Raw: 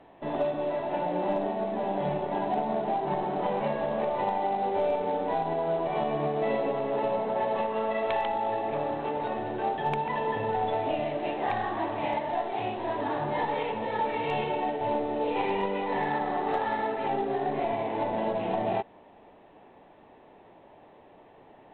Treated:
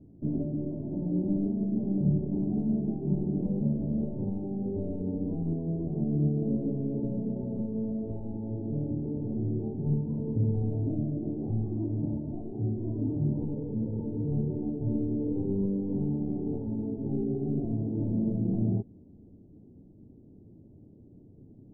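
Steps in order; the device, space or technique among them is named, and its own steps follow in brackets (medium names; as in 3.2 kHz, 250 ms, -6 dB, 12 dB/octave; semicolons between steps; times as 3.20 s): the neighbour's flat through the wall (low-pass 280 Hz 24 dB/octave; peaking EQ 96 Hz +7.5 dB 0.91 oct); trim +8.5 dB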